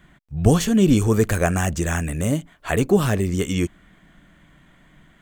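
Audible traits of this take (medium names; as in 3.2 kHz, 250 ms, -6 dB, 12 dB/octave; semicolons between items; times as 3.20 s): noise floor -55 dBFS; spectral tilt -5.5 dB/octave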